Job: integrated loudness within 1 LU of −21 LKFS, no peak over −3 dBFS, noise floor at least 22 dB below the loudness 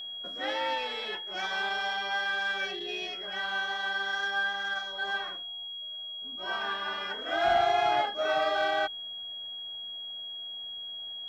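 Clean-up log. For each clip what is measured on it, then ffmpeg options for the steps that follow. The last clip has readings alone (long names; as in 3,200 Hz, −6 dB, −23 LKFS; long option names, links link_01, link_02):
interfering tone 3,300 Hz; level of the tone −37 dBFS; integrated loudness −31.0 LKFS; sample peak −16.0 dBFS; target loudness −21.0 LKFS
→ -af "bandreject=frequency=3300:width=30"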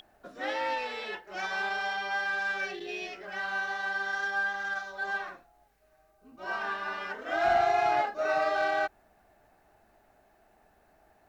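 interfering tone none found; integrated loudness −30.5 LKFS; sample peak −16.5 dBFS; target loudness −21.0 LKFS
→ -af "volume=9.5dB"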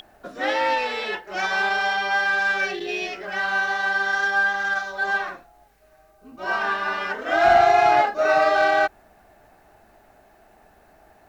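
integrated loudness −21.0 LKFS; sample peak −7.0 dBFS; background noise floor −56 dBFS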